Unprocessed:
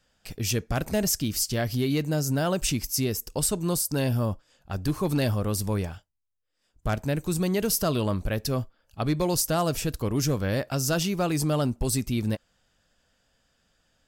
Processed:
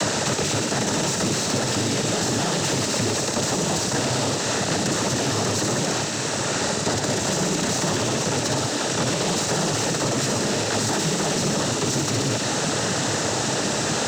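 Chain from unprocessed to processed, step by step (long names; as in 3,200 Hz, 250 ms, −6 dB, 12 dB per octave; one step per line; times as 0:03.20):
compressor on every frequency bin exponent 0.2
cochlear-implant simulation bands 12
brickwall limiter −11 dBFS, peak gain reduction 6.5 dB
leveller curve on the samples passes 1
delay with a high-pass on its return 61 ms, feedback 73%, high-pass 2,400 Hz, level −3.5 dB
multiband upward and downward compressor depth 100%
level −5.5 dB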